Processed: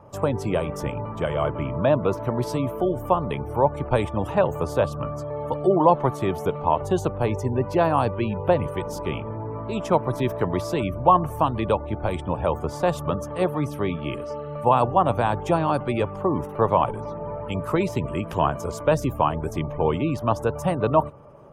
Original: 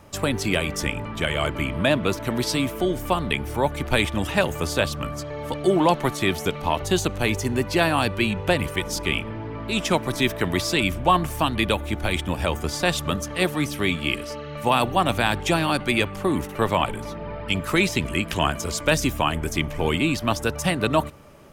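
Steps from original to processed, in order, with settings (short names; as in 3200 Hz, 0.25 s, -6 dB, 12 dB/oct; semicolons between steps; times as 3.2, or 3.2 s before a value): spectral gate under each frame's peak -30 dB strong; graphic EQ 125/500/1000/2000/4000/8000 Hz +10/+9/+10/-6/-7/-3 dB; gain -7 dB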